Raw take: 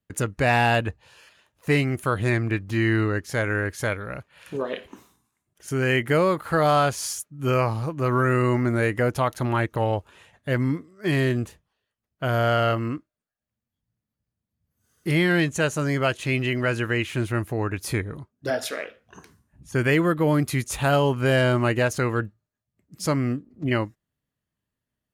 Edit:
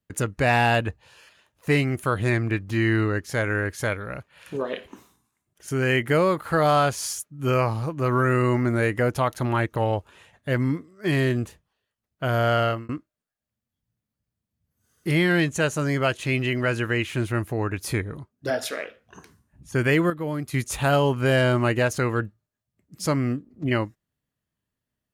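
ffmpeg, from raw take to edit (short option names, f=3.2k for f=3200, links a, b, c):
-filter_complex "[0:a]asplit=4[a][b][c][d];[a]atrim=end=12.89,asetpts=PTS-STARTPTS,afade=t=out:st=12.56:d=0.33:c=qsin[e];[b]atrim=start=12.89:end=20.102,asetpts=PTS-STARTPTS,afade=t=in:d=0.004:c=hsin[f];[c]atrim=start=20.098:end=20.542,asetpts=PTS-STARTPTS,volume=-8dB[g];[d]atrim=start=20.538[h];[e][f]concat=n=2:v=0:a=1[i];[i][g]acrossfade=d=0.004:c1=hsin:c2=hsin[j];[j][h]acrossfade=d=0.004:c1=hsin:c2=hsin"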